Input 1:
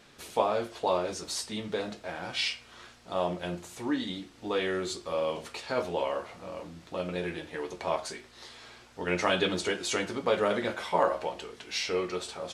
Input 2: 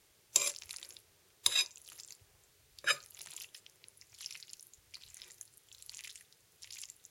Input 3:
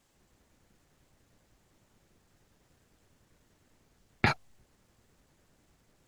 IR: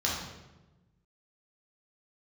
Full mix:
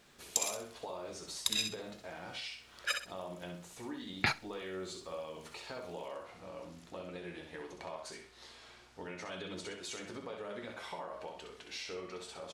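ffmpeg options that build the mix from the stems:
-filter_complex "[0:a]alimiter=limit=0.0944:level=0:latency=1:release=127,acompressor=threshold=0.0158:ratio=2.5,volume=0.447,asplit=2[s0][s1];[s1]volume=0.501[s2];[1:a]afwtdn=0.00562,volume=0.668,asplit=2[s3][s4];[s4]volume=0.501[s5];[2:a]tiltshelf=f=1500:g=-6,volume=0.631,asplit=2[s6][s7];[s7]volume=0.0891[s8];[s2][s5][s8]amix=inputs=3:normalize=0,aecho=0:1:64|128|192|256:1|0.29|0.0841|0.0244[s9];[s0][s3][s6][s9]amix=inputs=4:normalize=0"

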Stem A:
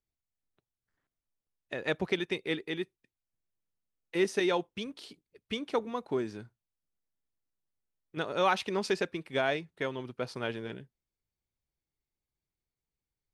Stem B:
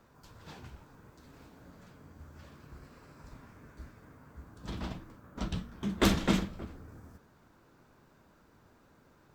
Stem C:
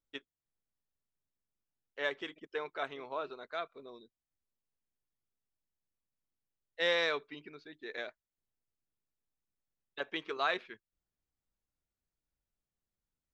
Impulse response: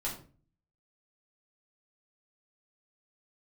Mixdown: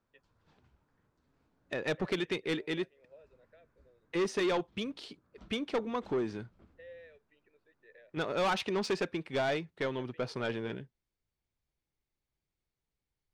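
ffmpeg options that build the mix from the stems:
-filter_complex "[0:a]asoftclip=type=tanh:threshold=0.0376,volume=1.41,asplit=2[s0][s1];[1:a]volume=0.112[s2];[2:a]alimiter=level_in=1.88:limit=0.0631:level=0:latency=1:release=415,volume=0.531,asplit=3[s3][s4][s5];[s3]bandpass=f=530:t=q:w=8,volume=1[s6];[s4]bandpass=f=1840:t=q:w=8,volume=0.501[s7];[s5]bandpass=f=2480:t=q:w=8,volume=0.355[s8];[s6][s7][s8]amix=inputs=3:normalize=0,volume=0.501[s9];[s1]apad=whole_len=412073[s10];[s2][s10]sidechaincompress=threshold=0.00316:ratio=6:attack=40:release=202[s11];[s0][s11][s9]amix=inputs=3:normalize=0,adynamicsmooth=sensitivity=3.5:basefreq=6600"

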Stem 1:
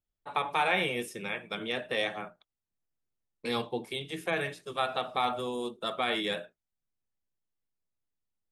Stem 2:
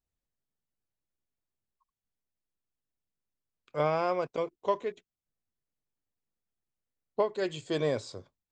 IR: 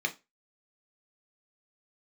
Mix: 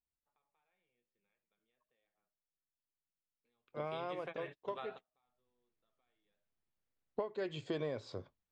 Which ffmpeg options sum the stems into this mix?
-filter_complex "[0:a]acompressor=threshold=0.0158:ratio=3,flanger=delay=6.4:depth=9.7:regen=88:speed=0.57:shape=triangular,volume=0.708[s0];[1:a]acontrast=39,volume=0.596,afade=t=in:st=5.08:d=0.36:silence=0.266073,asplit=2[s1][s2];[s2]apad=whole_len=375341[s3];[s0][s3]sidechaingate=range=0.0112:threshold=0.00355:ratio=16:detection=peak[s4];[s4][s1]amix=inputs=2:normalize=0,lowpass=3600,acompressor=threshold=0.0178:ratio=8"

